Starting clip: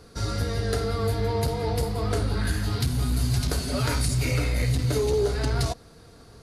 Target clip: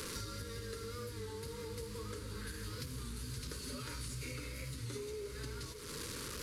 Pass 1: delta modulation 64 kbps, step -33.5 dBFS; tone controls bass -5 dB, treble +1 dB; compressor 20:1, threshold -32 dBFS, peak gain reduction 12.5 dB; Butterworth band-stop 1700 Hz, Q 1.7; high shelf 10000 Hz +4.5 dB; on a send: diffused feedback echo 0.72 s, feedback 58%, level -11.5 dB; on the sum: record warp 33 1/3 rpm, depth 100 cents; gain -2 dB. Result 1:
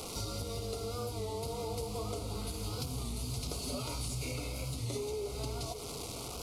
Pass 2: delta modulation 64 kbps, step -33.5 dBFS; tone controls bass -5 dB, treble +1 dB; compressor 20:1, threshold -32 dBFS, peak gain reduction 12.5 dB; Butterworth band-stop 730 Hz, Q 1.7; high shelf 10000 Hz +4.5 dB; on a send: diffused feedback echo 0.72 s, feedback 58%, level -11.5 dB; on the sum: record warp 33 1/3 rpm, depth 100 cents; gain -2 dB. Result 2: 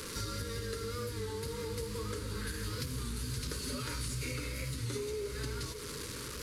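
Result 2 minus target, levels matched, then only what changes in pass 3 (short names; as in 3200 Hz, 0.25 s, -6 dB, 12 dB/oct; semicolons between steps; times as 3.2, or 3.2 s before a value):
compressor: peak gain reduction -5.5 dB
change: compressor 20:1, threshold -38 dBFS, peak gain reduction 18.5 dB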